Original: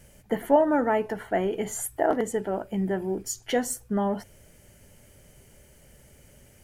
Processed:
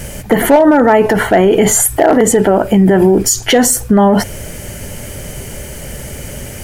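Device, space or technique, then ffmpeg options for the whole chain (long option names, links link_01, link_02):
loud club master: -af "acompressor=threshold=-26dB:ratio=2,asoftclip=type=hard:threshold=-20dB,alimiter=level_in=28.5dB:limit=-1dB:release=50:level=0:latency=1,volume=-1dB"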